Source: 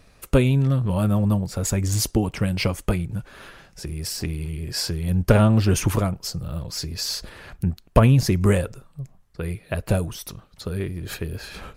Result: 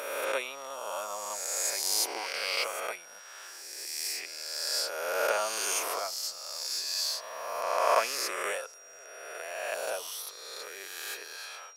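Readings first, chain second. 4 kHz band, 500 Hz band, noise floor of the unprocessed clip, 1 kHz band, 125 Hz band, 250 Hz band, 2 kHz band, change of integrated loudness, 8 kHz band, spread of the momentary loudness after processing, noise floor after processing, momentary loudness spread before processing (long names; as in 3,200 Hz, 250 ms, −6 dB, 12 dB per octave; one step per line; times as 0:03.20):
−1.0 dB, −7.5 dB, −55 dBFS, −0.5 dB, below −40 dB, −31.0 dB, −0.5 dB, −8.5 dB, −0.5 dB, 14 LU, −49 dBFS, 17 LU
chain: peak hold with a rise ahead of every peak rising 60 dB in 1.93 s
high-pass filter 600 Hz 24 dB per octave
steady tone 5,700 Hz −43 dBFS
level −7.5 dB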